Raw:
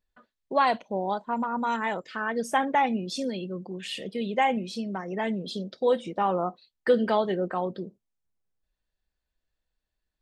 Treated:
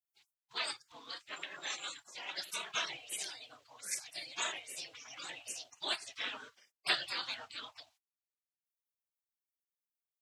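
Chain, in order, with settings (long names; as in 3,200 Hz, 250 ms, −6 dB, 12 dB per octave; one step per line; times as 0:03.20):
meter weighting curve D
gate on every frequency bin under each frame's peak −30 dB weak
low-shelf EQ 440 Hz −11.5 dB
level +9.5 dB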